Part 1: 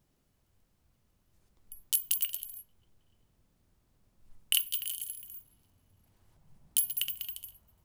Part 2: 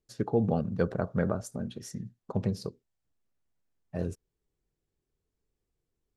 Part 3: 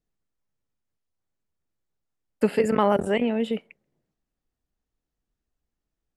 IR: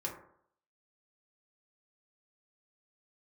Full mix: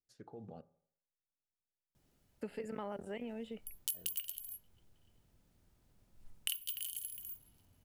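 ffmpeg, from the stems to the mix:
-filter_complex "[0:a]adelay=1950,volume=0dB[link_01];[1:a]lowshelf=frequency=400:gain=-7.5,alimiter=limit=-22.5dB:level=0:latency=1:release=46,volume=-18dB,asplit=3[link_02][link_03][link_04];[link_02]atrim=end=0.61,asetpts=PTS-STARTPTS,afade=type=out:start_time=0.606:duration=0.004:curve=hsin[link_05];[link_03]atrim=start=0.61:end=3.52,asetpts=PTS-STARTPTS,volume=0[link_06];[link_04]atrim=start=3.52,asetpts=PTS-STARTPTS,afade=type=in:duration=0.004:curve=hsin[link_07];[link_05][link_06][link_07]concat=n=3:v=0:a=1,asplit=2[link_08][link_09];[link_09]volume=-14dB[link_10];[2:a]volume=-18dB[link_11];[3:a]atrim=start_sample=2205[link_12];[link_10][link_12]afir=irnorm=-1:irlink=0[link_13];[link_01][link_08][link_11][link_13]amix=inputs=4:normalize=0,bandreject=frequency=1100:width=13,acompressor=threshold=-39dB:ratio=2.5"

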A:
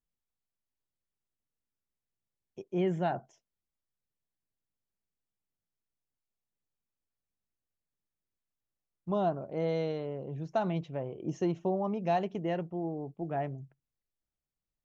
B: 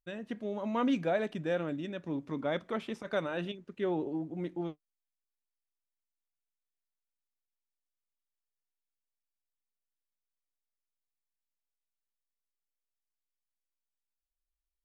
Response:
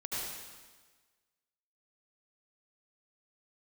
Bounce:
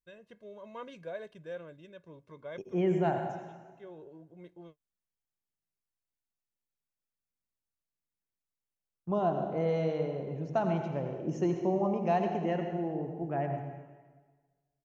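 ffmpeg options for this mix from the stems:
-filter_complex "[0:a]agate=range=-7dB:threshold=-55dB:ratio=16:detection=peak,equalizer=frequency=3700:width_type=o:width=0.38:gain=-9.5,volume=-2dB,asplit=3[link_01][link_02][link_03];[link_02]volume=-5dB[link_04];[1:a]aecho=1:1:1.9:0.75,volume=-13dB[link_05];[link_03]apad=whole_len=654876[link_06];[link_05][link_06]sidechaincompress=threshold=-49dB:ratio=8:attack=5.9:release=691[link_07];[2:a]atrim=start_sample=2205[link_08];[link_04][link_08]afir=irnorm=-1:irlink=0[link_09];[link_01][link_07][link_09]amix=inputs=3:normalize=0"

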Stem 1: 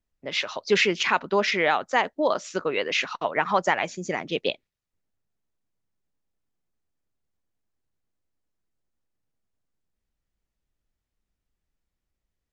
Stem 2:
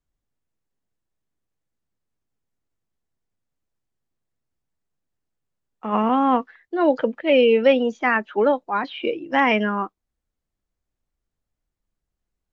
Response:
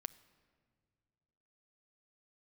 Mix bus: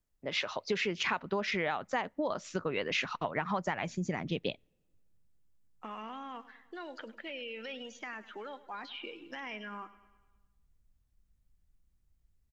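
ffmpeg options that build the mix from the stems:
-filter_complex "[0:a]lowpass=frequency=1500:poles=1,asubboost=boost=5:cutoff=190,acompressor=threshold=-27dB:ratio=6,volume=-3dB,asplit=2[link_01][link_02];[link_02]volume=-18.5dB[link_03];[1:a]alimiter=limit=-16dB:level=0:latency=1,acrossover=split=1200|3600[link_04][link_05][link_06];[link_04]acompressor=threshold=-40dB:ratio=4[link_07];[link_05]acompressor=threshold=-39dB:ratio=4[link_08];[link_06]acompressor=threshold=-51dB:ratio=4[link_09];[link_07][link_08][link_09]amix=inputs=3:normalize=0,volume=-10dB,asplit=4[link_10][link_11][link_12][link_13];[link_11]volume=-6dB[link_14];[link_12]volume=-14.5dB[link_15];[link_13]apad=whole_len=552267[link_16];[link_01][link_16]sidechaincompress=threshold=-48dB:ratio=8:attack=16:release=354[link_17];[2:a]atrim=start_sample=2205[link_18];[link_03][link_14]amix=inputs=2:normalize=0[link_19];[link_19][link_18]afir=irnorm=-1:irlink=0[link_20];[link_15]aecho=0:1:102|204|306|408|510|612|714|816:1|0.56|0.314|0.176|0.0983|0.0551|0.0308|0.0173[link_21];[link_17][link_10][link_20][link_21]amix=inputs=4:normalize=0,highshelf=frequency=4200:gain=10"

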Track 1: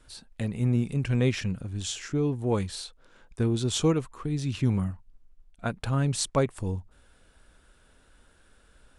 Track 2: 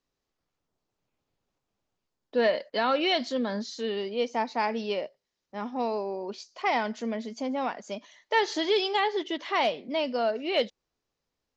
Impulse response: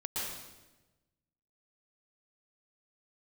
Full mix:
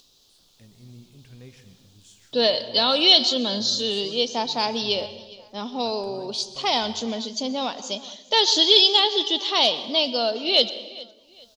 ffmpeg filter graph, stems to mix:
-filter_complex "[0:a]highshelf=frequency=6300:gain=7.5,flanger=delay=9.3:depth=2:regen=-84:speed=0.55:shape=sinusoidal,adelay=200,volume=-19dB,asplit=2[link_01][link_02];[link_02]volume=-11.5dB[link_03];[1:a]highshelf=frequency=2700:width_type=q:width=3:gain=10,acompressor=mode=upward:threshold=-49dB:ratio=2.5,volume=2dB,asplit=3[link_04][link_05][link_06];[link_05]volume=-17dB[link_07];[link_06]volume=-20dB[link_08];[2:a]atrim=start_sample=2205[link_09];[link_03][link_07]amix=inputs=2:normalize=0[link_10];[link_10][link_09]afir=irnorm=-1:irlink=0[link_11];[link_08]aecho=0:1:412|824|1236|1648:1|0.3|0.09|0.027[link_12];[link_01][link_04][link_11][link_12]amix=inputs=4:normalize=0"

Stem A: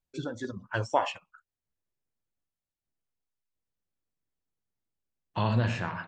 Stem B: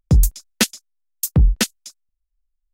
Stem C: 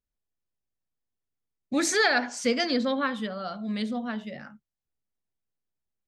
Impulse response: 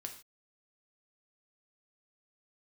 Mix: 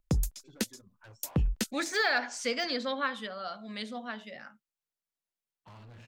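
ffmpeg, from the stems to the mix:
-filter_complex "[0:a]volume=30dB,asoftclip=hard,volume=-30dB,adelay=300,volume=-19dB[link_01];[1:a]acrossover=split=480|4000[link_02][link_03][link_04];[link_02]acompressor=threshold=-21dB:ratio=4[link_05];[link_03]acompressor=threshold=-34dB:ratio=4[link_06];[link_04]acompressor=threshold=-30dB:ratio=4[link_07];[link_05][link_06][link_07]amix=inputs=3:normalize=0,alimiter=limit=-13.5dB:level=0:latency=1:release=322,volume=-4dB[link_08];[2:a]deesser=0.75,highpass=frequency=750:poles=1,acontrast=69,volume=-7.5dB[link_09];[link_01][link_08][link_09]amix=inputs=3:normalize=0"

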